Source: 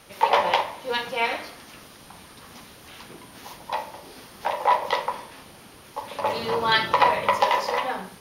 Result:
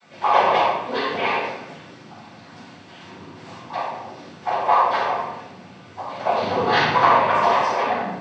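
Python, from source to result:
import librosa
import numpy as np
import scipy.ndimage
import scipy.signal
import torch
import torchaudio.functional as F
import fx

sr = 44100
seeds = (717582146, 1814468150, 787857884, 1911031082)

y = fx.high_shelf(x, sr, hz=4500.0, db=-11.0)
y = fx.noise_vocoder(y, sr, seeds[0], bands=16)
y = fx.room_shoebox(y, sr, seeds[1], volume_m3=340.0, walls='mixed', distance_m=7.8)
y = F.gain(torch.from_numpy(y), -11.0).numpy()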